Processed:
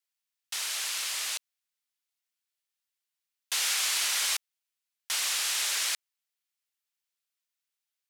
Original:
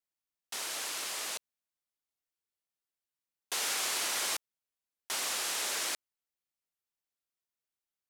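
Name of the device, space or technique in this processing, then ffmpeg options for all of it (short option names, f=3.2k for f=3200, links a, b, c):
filter by subtraction: -filter_complex "[0:a]asplit=2[a][b];[b]lowpass=2.7k,volume=-1[c];[a][c]amix=inputs=2:normalize=0,volume=4dB"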